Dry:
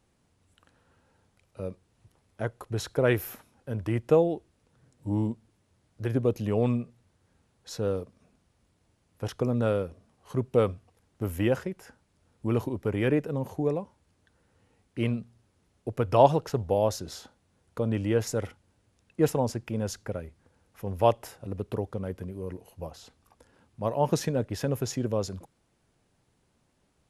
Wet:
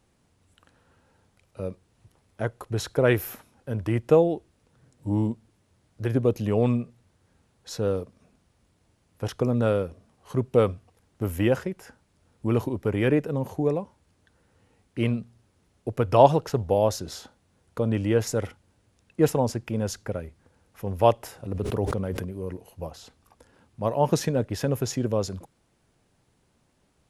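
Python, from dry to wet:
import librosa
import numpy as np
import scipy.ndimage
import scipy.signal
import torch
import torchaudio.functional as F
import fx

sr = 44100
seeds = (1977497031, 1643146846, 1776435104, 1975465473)

y = fx.sustainer(x, sr, db_per_s=23.0, at=(21.33, 22.25))
y = y * 10.0 ** (3.0 / 20.0)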